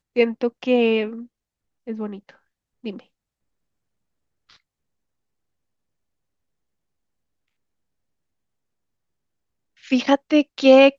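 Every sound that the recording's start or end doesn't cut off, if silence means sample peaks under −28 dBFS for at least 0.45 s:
0:01.88–0:02.15
0:02.86–0:02.96

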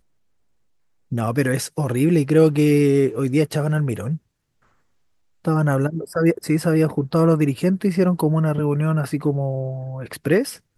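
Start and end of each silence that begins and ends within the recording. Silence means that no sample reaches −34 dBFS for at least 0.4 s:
0:04.17–0:05.45

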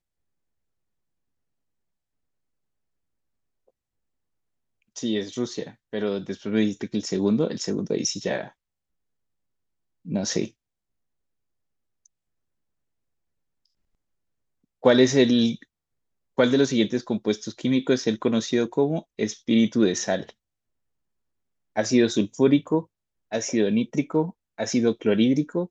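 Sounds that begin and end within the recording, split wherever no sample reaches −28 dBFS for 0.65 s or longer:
0:04.97–0:08.43
0:10.09–0:10.45
0:14.84–0:15.55
0:16.38–0:20.29

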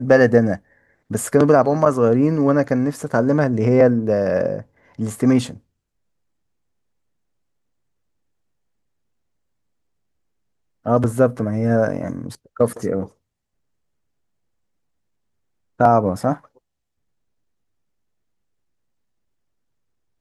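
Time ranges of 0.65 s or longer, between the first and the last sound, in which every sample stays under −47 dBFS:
0:05.59–0:10.85
0:13.11–0:15.79

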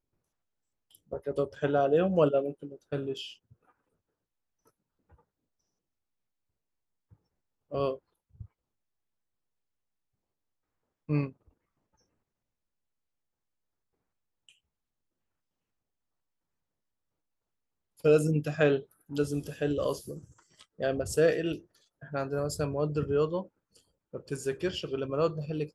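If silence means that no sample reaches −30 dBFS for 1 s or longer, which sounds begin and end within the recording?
0:01.13–0:03.20
0:07.74–0:07.94
0:11.10–0:11.26

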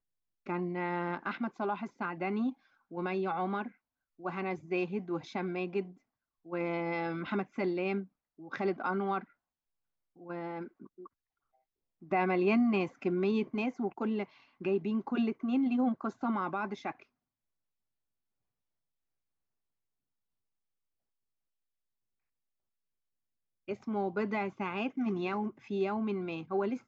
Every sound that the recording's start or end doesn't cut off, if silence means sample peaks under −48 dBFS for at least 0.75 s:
0:10.20–0:11.07
0:12.02–0:17.03

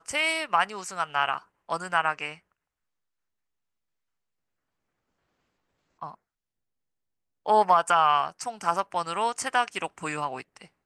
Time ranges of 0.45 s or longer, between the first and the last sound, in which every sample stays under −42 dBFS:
0:02.36–0:06.02
0:06.14–0:07.46

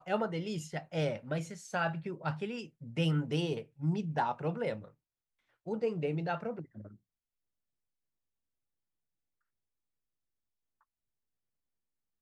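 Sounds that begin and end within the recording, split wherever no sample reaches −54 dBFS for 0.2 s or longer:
0:05.66–0:06.96

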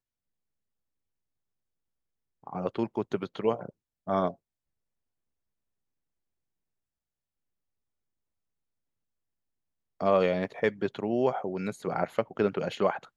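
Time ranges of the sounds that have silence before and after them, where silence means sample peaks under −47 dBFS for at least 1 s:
0:02.44–0:04.34

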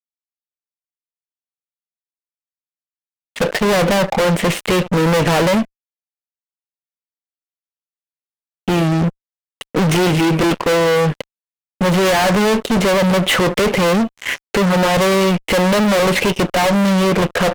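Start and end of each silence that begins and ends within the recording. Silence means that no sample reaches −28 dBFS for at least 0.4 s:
0:05.65–0:08.68
0:09.09–0:09.61
0:11.22–0:11.81

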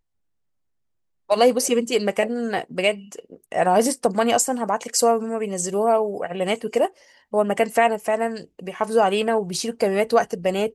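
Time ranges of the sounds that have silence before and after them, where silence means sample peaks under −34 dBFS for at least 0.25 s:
0:01.30–0:06.88

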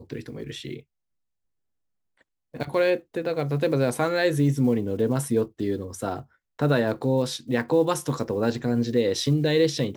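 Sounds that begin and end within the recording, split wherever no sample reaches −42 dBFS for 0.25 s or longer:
0:02.54–0:06.22

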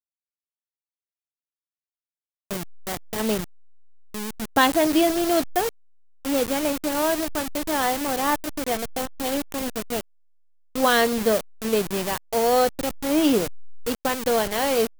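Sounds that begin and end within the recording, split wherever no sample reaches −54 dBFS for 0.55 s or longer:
0:02.51–0:10.01

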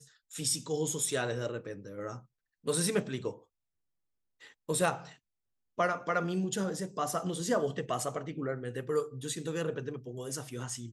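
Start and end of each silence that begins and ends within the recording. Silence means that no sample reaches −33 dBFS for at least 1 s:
0:03.30–0:04.69

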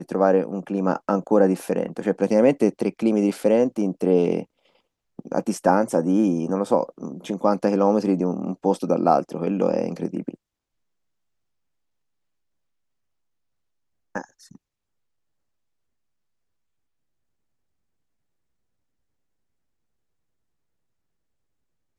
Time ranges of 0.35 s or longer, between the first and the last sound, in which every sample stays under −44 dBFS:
0:04.45–0:05.19
0:10.35–0:14.15

